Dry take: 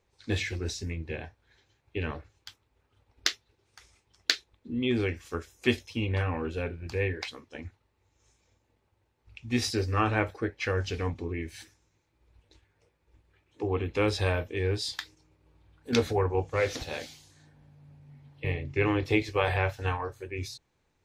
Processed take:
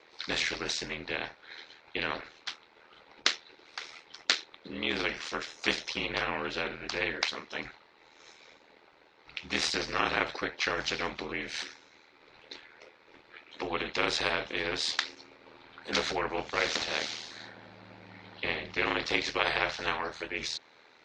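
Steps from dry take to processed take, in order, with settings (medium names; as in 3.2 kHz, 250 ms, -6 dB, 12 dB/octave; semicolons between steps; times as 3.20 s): cabinet simulation 370–5200 Hz, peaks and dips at 1.4 kHz +5 dB, 2.1 kHz +5 dB, 4 kHz +6 dB; ring modulator 40 Hz; spectrum-flattening compressor 2:1; trim +2 dB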